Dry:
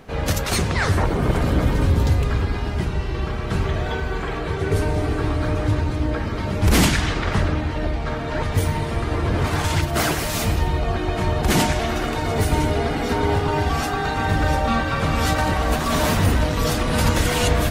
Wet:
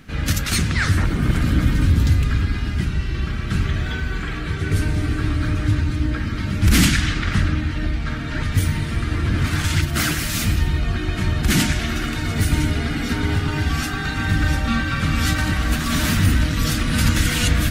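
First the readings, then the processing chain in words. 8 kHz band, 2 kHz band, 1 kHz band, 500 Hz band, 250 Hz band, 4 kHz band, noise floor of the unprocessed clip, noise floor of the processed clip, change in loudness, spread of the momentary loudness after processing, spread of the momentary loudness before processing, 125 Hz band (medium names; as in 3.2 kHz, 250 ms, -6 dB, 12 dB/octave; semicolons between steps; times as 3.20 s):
+2.0 dB, +2.0 dB, -6.5 dB, -9.5 dB, +1.0 dB, +2.0 dB, -26 dBFS, -26 dBFS, +1.0 dB, 6 LU, 6 LU, +2.0 dB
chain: high-order bell 640 Hz -13 dB; trim +2 dB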